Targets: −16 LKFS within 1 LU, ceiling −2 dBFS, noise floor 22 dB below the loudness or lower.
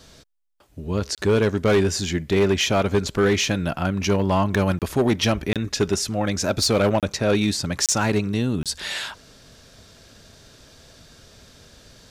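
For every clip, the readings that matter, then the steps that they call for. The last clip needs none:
share of clipped samples 1.3%; peaks flattened at −13.0 dBFS; number of dropouts 6; longest dropout 27 ms; integrated loudness −22.0 LKFS; sample peak −13.0 dBFS; target loudness −16.0 LKFS
→ clipped peaks rebuilt −13 dBFS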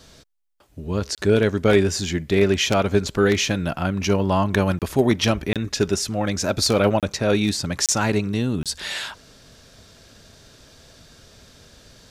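share of clipped samples 0.0%; number of dropouts 6; longest dropout 27 ms
→ repair the gap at 0:01.15/0:04.79/0:05.53/0:07.00/0:07.86/0:08.63, 27 ms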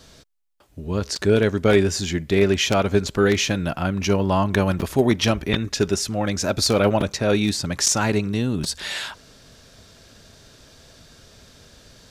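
number of dropouts 0; integrated loudness −21.0 LKFS; sample peak −4.0 dBFS; target loudness −16.0 LKFS
→ level +5 dB
brickwall limiter −2 dBFS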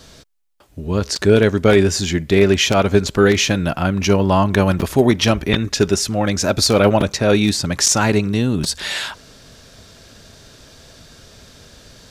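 integrated loudness −16.5 LKFS; sample peak −2.0 dBFS; background noise floor −46 dBFS

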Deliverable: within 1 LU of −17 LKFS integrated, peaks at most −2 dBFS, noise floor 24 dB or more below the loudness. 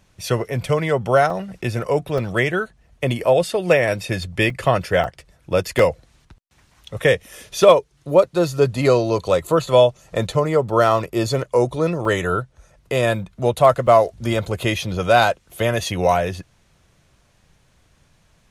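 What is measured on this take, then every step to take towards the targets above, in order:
number of dropouts 7; longest dropout 2.9 ms; integrated loudness −19.0 LKFS; sample peak −1.0 dBFS; target loudness −17.0 LKFS
→ repair the gap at 0:01.30/0:02.18/0:04.50/0:05.04/0:05.79/0:12.05/0:13.87, 2.9 ms
level +2 dB
brickwall limiter −2 dBFS

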